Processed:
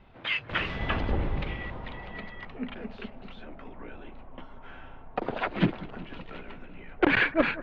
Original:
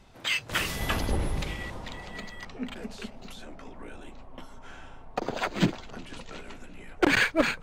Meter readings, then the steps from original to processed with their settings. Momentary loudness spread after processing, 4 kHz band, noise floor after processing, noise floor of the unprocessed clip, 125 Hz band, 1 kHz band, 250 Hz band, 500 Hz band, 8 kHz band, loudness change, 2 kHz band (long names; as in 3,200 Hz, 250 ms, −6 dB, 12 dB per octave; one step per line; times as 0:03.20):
23 LU, −4.0 dB, −48 dBFS, −48 dBFS, 0.0 dB, 0.0 dB, 0.0 dB, 0.0 dB, below −25 dB, −0.5 dB, 0.0 dB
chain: low-pass filter 3,100 Hz 24 dB per octave
bucket-brigade delay 188 ms, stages 2,048, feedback 60%, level −18 dB